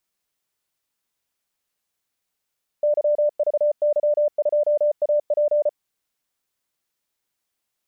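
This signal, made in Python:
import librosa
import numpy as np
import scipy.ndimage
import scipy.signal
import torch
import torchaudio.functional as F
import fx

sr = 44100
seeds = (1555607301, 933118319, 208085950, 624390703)

y = fx.morse(sr, text='YVY2AP', wpm=34, hz=593.0, level_db=-15.5)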